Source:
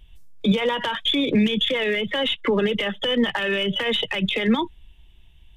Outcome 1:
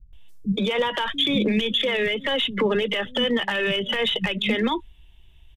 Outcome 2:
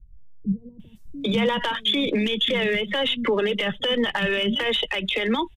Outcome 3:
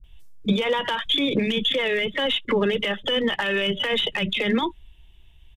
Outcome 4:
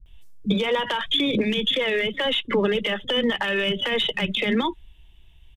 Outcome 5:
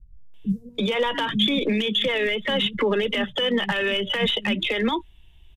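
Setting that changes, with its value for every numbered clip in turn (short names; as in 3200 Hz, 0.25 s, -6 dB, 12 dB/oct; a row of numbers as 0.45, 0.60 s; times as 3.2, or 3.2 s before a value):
bands offset in time, time: 130, 800, 40, 60, 340 ms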